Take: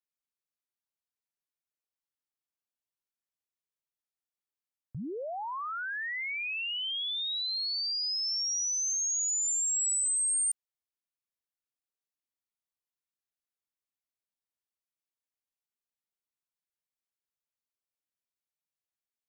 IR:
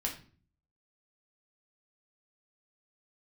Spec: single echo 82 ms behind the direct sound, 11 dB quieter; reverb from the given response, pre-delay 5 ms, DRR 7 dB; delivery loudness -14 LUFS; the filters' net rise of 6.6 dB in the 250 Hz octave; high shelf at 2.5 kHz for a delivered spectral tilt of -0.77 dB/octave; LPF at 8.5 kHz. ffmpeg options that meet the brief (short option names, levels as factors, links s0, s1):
-filter_complex "[0:a]lowpass=8500,equalizer=f=250:t=o:g=8.5,highshelf=f=2500:g=-4.5,aecho=1:1:82:0.282,asplit=2[s0][s1];[1:a]atrim=start_sample=2205,adelay=5[s2];[s1][s2]afir=irnorm=-1:irlink=0,volume=0.335[s3];[s0][s3]amix=inputs=2:normalize=0,volume=7.94"